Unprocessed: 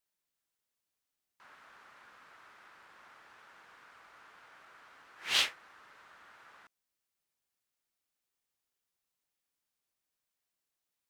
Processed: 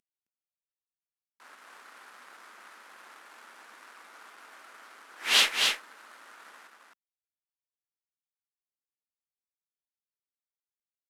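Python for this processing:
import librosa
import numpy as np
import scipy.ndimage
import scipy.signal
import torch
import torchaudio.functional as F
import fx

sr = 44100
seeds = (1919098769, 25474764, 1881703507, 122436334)

p1 = fx.cvsd(x, sr, bps=64000)
p2 = fx.leveller(p1, sr, passes=1)
p3 = fx.brickwall_highpass(p2, sr, low_hz=190.0)
p4 = p3 + fx.echo_single(p3, sr, ms=265, db=-4.0, dry=0)
p5 = fx.cheby_harmonics(p4, sr, harmonics=(6,), levels_db=(-35,), full_scale_db=-15.5)
y = p5 * librosa.db_to_amplitude(4.5)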